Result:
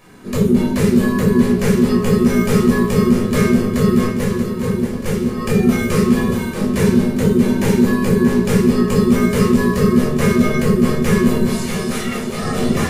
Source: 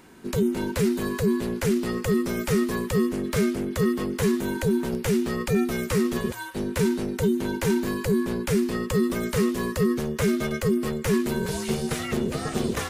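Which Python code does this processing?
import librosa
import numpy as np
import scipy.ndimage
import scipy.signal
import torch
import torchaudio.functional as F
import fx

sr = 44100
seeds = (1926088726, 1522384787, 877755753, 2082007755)

p1 = fx.level_steps(x, sr, step_db=13, at=(4.06, 5.37))
p2 = fx.highpass(p1, sr, hz=800.0, slope=6, at=(11.45, 12.4))
p3 = p2 + fx.echo_feedback(p2, sr, ms=632, feedback_pct=54, wet_db=-9.0, dry=0)
p4 = fx.room_shoebox(p3, sr, seeds[0], volume_m3=690.0, walls='furnished', distance_m=5.8)
y = p4 * librosa.db_to_amplitude(-1.0)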